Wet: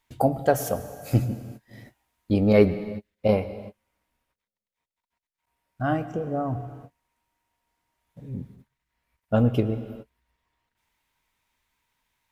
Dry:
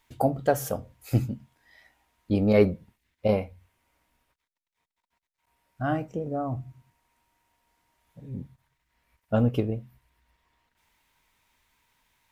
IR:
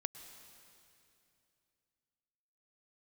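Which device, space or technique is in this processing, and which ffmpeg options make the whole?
keyed gated reverb: -filter_complex "[0:a]asettb=1/sr,asplit=3[s0][s1][s2];[s0]atrim=end=1.294[s3];[s1]atrim=start=1.29:end=2.34,asetpts=PTS-STARTPTS,afade=t=in:d=0.004:c=qsin,afade=t=out:st=1.046:d=0.004:c=qsin,highshelf=f=6400:g=6[s4];[s2]atrim=start=2.336[s5];[s3][s4]acrossfade=d=0.004:c1=hsin:c2=qsin[s6];[s6][s5]acrossfade=d=0.004:c1=qsin:c2=hsin,asplit=3[s7][s8][s9];[1:a]atrim=start_sample=2205[s10];[s8][s10]afir=irnorm=-1:irlink=0[s11];[s9]apad=whole_len=542995[s12];[s11][s12]sidechaingate=range=0.00562:threshold=0.00141:ratio=16:detection=peak,volume=2[s13];[s7][s13]amix=inputs=2:normalize=0,volume=0.501"

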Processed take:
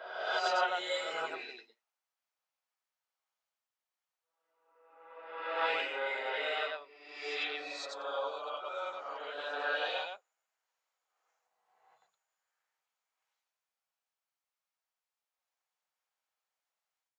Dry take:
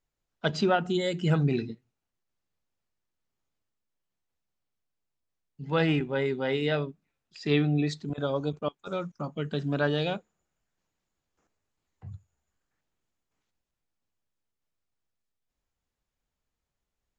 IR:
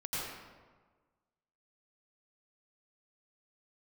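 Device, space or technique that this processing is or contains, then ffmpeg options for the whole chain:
ghost voice: -filter_complex "[0:a]areverse[s0];[1:a]atrim=start_sample=2205[s1];[s0][s1]afir=irnorm=-1:irlink=0,areverse,highpass=f=640:w=0.5412,highpass=f=640:w=1.3066,volume=0.631"

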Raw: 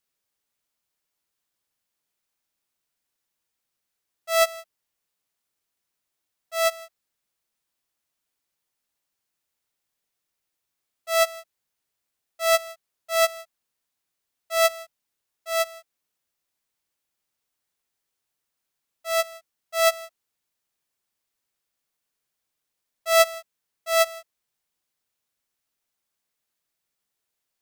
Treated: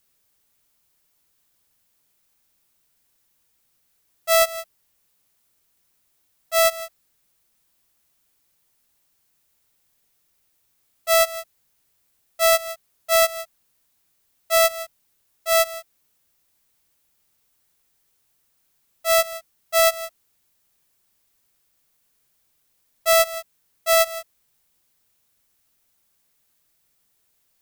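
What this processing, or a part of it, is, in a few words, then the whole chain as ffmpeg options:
ASMR close-microphone chain: -af "lowshelf=f=200:g=8,acompressor=threshold=0.0631:ratio=6,highshelf=f=9500:g=7.5,volume=2.82"

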